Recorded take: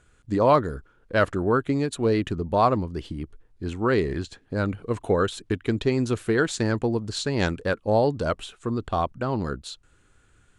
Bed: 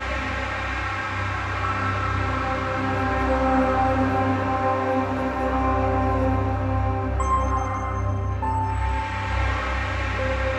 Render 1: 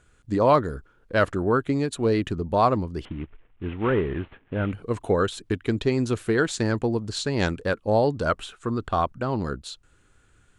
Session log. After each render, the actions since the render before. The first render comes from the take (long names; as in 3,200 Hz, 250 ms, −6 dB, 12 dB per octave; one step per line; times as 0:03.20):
0:03.05–0:04.73: variable-slope delta modulation 16 kbit/s
0:08.22–0:09.19: parametric band 1,400 Hz +5.5 dB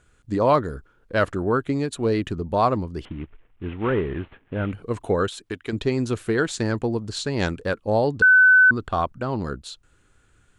0:05.28–0:05.73: low-shelf EQ 310 Hz −11 dB
0:08.22–0:08.71: beep over 1,510 Hz −10 dBFS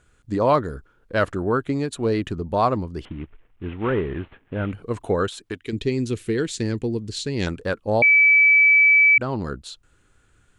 0:05.58–0:07.47: flat-topped bell 950 Hz −11 dB
0:08.02–0:09.18: beep over 2,300 Hz −11 dBFS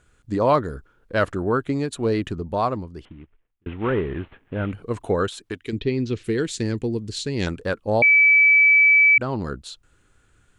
0:02.24–0:03.66: fade out
0:05.77–0:06.23: low-pass filter 3,900 Hz → 6,000 Hz 24 dB per octave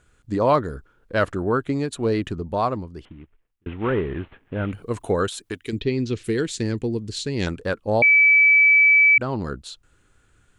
0:04.68–0:06.41: high-shelf EQ 7,300 Hz +10 dB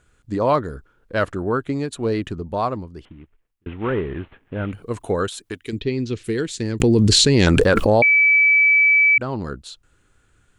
0:06.80–0:08.36: envelope flattener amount 100%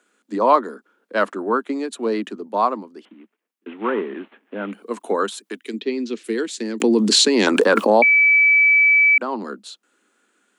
Butterworth high-pass 200 Hz 96 dB per octave
dynamic equaliser 1,000 Hz, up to +7 dB, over −37 dBFS, Q 2.1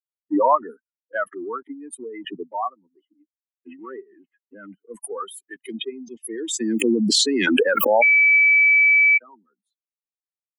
spectral dynamics exaggerated over time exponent 3
background raised ahead of every attack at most 23 dB per second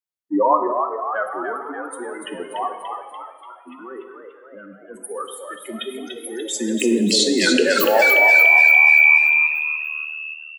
echo with shifted repeats 291 ms, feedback 56%, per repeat +76 Hz, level −5.5 dB
reverb whose tail is shaped and stops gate 450 ms falling, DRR 6 dB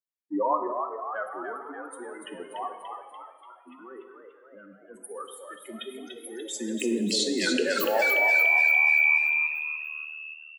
level −9 dB